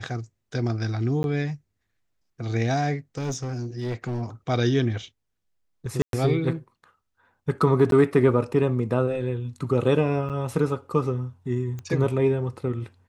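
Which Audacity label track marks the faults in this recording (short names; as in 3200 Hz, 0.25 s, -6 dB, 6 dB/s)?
1.230000	1.240000	gap 11 ms
3.170000	4.220000	clipped -24.5 dBFS
6.020000	6.130000	gap 0.112 s
7.910000	7.920000	gap 12 ms
10.290000	10.300000	gap 7.7 ms
11.790000	11.790000	pop -24 dBFS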